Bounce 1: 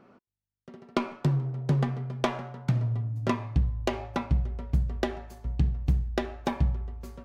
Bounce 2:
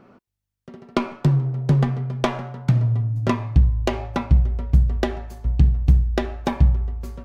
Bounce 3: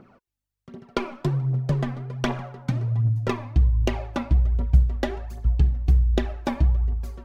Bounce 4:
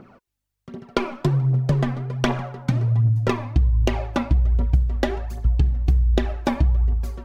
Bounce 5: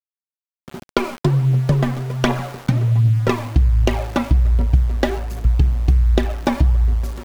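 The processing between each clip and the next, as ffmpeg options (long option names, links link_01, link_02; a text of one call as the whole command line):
ffmpeg -i in.wav -af "lowshelf=frequency=110:gain=7,volume=5dB" out.wav
ffmpeg -i in.wav -af "aphaser=in_gain=1:out_gain=1:delay=4:decay=0.59:speed=1.3:type=triangular,volume=-4.5dB" out.wav
ffmpeg -i in.wav -af "acompressor=threshold=-19dB:ratio=6,volume=5dB" out.wav
ffmpeg -i in.wav -af "aeval=exprs='val(0)*gte(abs(val(0)),0.0188)':channel_layout=same,volume=3.5dB" out.wav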